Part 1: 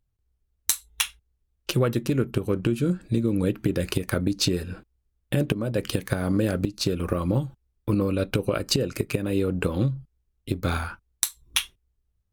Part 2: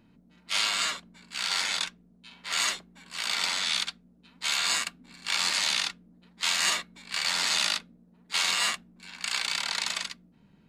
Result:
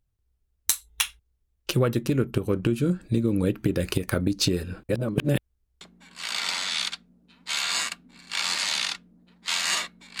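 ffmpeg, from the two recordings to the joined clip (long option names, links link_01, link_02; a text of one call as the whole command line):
ffmpeg -i cue0.wav -i cue1.wav -filter_complex "[0:a]apad=whole_dur=10.2,atrim=end=10.2,asplit=2[link_01][link_02];[link_01]atrim=end=4.892[link_03];[link_02]atrim=start=4.888:end=5.812,asetpts=PTS-STARTPTS,areverse[link_04];[1:a]atrim=start=2.758:end=7.15[link_05];[link_03][link_04]acrossfade=duration=0.004:curve1=hsin:curve2=hsin[link_06];[link_06][link_05]acrossfade=duration=0.004:curve1=hsin:curve2=hsin" out.wav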